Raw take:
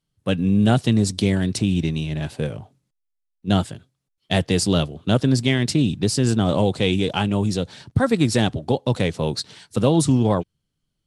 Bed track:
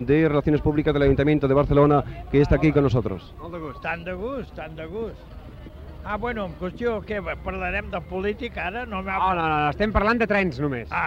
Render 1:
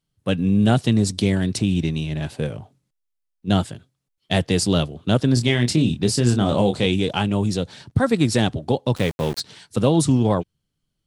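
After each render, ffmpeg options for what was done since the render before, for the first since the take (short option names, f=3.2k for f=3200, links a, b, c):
-filter_complex "[0:a]asettb=1/sr,asplit=3[a][b][c];[a]atrim=end=5.344[d];[b]atrim=start=5.34:end=6.86,asetpts=PTS-STARTPTS,afade=t=in:d=0.004:c=qsin,afade=t=out:st=1.516:d=0.004:c=qsin,asplit=2[e][f];[f]adelay=25,volume=-6.5dB[g];[e][g]amix=inputs=2:normalize=0,atrim=end_sample=67032[h];[c]atrim=start=6.856[i];[d][h]acrossfade=d=0.004:c1=hsin:c2=qsin[j];[j][i]acrossfade=d=0.004:c1=qsin:c2=hsin,asplit=3[k][l][m];[k]afade=t=out:st=8.95:d=0.02[n];[l]aeval=exprs='val(0)*gte(abs(val(0)),0.0355)':c=same,afade=t=in:st=8.95:d=0.02,afade=t=out:st=9.39:d=0.02[o];[m]afade=t=in:st=9.39:d=0.02[p];[n][o][p]amix=inputs=3:normalize=0"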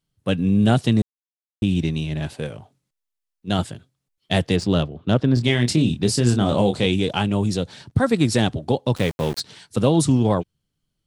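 -filter_complex "[0:a]asettb=1/sr,asplit=3[a][b][c];[a]atrim=end=2.334[d];[b]atrim=start=2.33:end=3.59,asetpts=PTS-STARTPTS,afade=t=in:d=0.004:c=qsin,afade=t=out:st=1.256:d=0.004:c=qsin,lowshelf=f=450:g=-5.5[e];[c]atrim=start=3.586[f];[d][e]acrossfade=d=0.004:c1=hsin:c2=qsin[g];[g][f]acrossfade=d=0.004:c1=qsin:c2=hsin,asettb=1/sr,asplit=3[h][i][j];[h]atrim=end=4.564[k];[i]atrim=start=4.56:end=5.44,asetpts=PTS-STARTPTS,afade=t=in:d=0.004:c=qsin,afade=t=out:st=0.876:d=0.004:c=qsin,adynamicsmooth=sensitivity=0.5:basefreq=3.2k[l];[j]atrim=start=5.436[m];[k][l]acrossfade=d=0.004:c1=hsin:c2=qsin[n];[n][m]acrossfade=d=0.004:c1=qsin:c2=hsin,asplit=3[o][p][q];[o]atrim=end=1.02,asetpts=PTS-STARTPTS,afade=t=out:st=1.016:d=0.004:c=hsin[r];[p]atrim=start=1.02:end=1.62,asetpts=PTS-STARTPTS,volume=0[s];[q]atrim=start=1.62,asetpts=PTS-STARTPTS,afade=t=in:d=0.004:c=hsin[t];[r][s][t]concat=n=3:v=0:a=1"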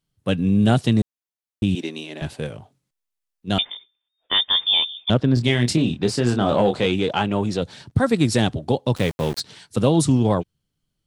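-filter_complex "[0:a]asettb=1/sr,asplit=3[a][b][c];[a]atrim=end=1.754[d];[b]atrim=start=1.75:end=2.22,asetpts=PTS-STARTPTS,afade=t=in:d=0.004:c=qsin,afade=t=out:st=0.466:d=0.004:c=qsin,highpass=f=280:w=0.5412,highpass=f=280:w=1.3066[e];[c]atrim=start=2.216[f];[d][e]acrossfade=d=0.004:c1=hsin:c2=qsin[g];[g][f]acrossfade=d=0.004:c1=qsin:c2=hsin,asettb=1/sr,asplit=3[h][i][j];[h]atrim=end=3.584[k];[i]atrim=start=3.58:end=5.1,asetpts=PTS-STARTPTS,afade=t=in:d=0.004:c=qsin,afade=t=out:st=1.516:d=0.004:c=qsin,lowpass=f=3.1k:t=q:w=0.5098,lowpass=f=3.1k:t=q:w=0.6013,lowpass=f=3.1k:t=q:w=0.9,lowpass=f=3.1k:t=q:w=2.563,afreqshift=-3700[l];[j]atrim=start=5.096[m];[k][l]acrossfade=d=0.004:c1=hsin:c2=qsin[n];[n][m]acrossfade=d=0.004:c1=qsin:c2=hsin,asettb=1/sr,asplit=3[o][p][q];[o]atrim=end=5.774[r];[p]atrim=start=5.77:end=7.62,asetpts=PTS-STARTPTS,afade=t=in:d=0.004:c=qsin,afade=t=out:st=1.846:d=0.004:c=qsin,asplit=2[s][t];[t]highpass=f=720:p=1,volume=12dB,asoftclip=type=tanh:threshold=-4.5dB[u];[s][u]amix=inputs=2:normalize=0,lowpass=f=1.5k:p=1,volume=-6dB[v];[q]atrim=start=7.616[w];[r][v]acrossfade=d=0.004:c1=hsin:c2=qsin[x];[x][w]acrossfade=d=0.004:c1=qsin:c2=hsin"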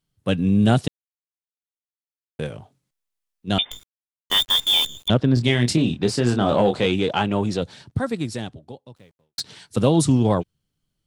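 -filter_complex "[0:a]asettb=1/sr,asplit=3[a][b][c];[a]atrim=end=3.714[d];[b]atrim=start=3.71:end=5.08,asetpts=PTS-STARTPTS,afade=t=in:d=0.004:c=qsin,afade=t=out:st=1.366:d=0.004:c=qsin,acrusher=bits=5:dc=4:mix=0:aa=0.000001[e];[c]atrim=start=5.076[f];[d][e]acrossfade=d=0.004:c1=hsin:c2=qsin[g];[g][f]acrossfade=d=0.004:c1=qsin:c2=hsin,asplit=4[h][i][j][k];[h]atrim=end=0.88,asetpts=PTS-STARTPTS,afade=t=out:st=0.876:d=0.004:c=hsin[l];[i]atrim=start=0.88:end=2.39,asetpts=PTS-STARTPTS,volume=0[m];[j]atrim=start=2.39:end=9.38,asetpts=PTS-STARTPTS,afade=t=in:d=0.004:c=hsin,afade=t=out:st=5.13:d=1.86:c=qua[n];[k]atrim=start=9.38,asetpts=PTS-STARTPTS,afade=t=in:d=0.004:c=hsin[o];[l][m][n][o]concat=n=4:v=0:a=1"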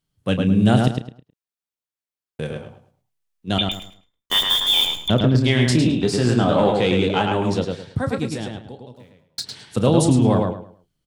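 -filter_complex "[0:a]asplit=2[a][b];[b]adelay=32,volume=-12dB[c];[a][c]amix=inputs=2:normalize=0,asplit=2[d][e];[e]adelay=106,lowpass=f=3.8k:p=1,volume=-3dB,asplit=2[f][g];[g]adelay=106,lowpass=f=3.8k:p=1,volume=0.28,asplit=2[h][i];[i]adelay=106,lowpass=f=3.8k:p=1,volume=0.28,asplit=2[j][k];[k]adelay=106,lowpass=f=3.8k:p=1,volume=0.28[l];[f][h][j][l]amix=inputs=4:normalize=0[m];[d][m]amix=inputs=2:normalize=0"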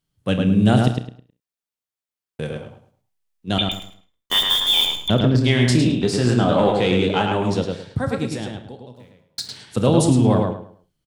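-af "aecho=1:1:48|65:0.133|0.158"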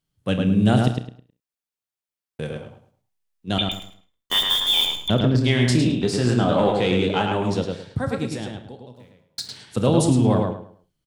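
-af "volume=-2dB"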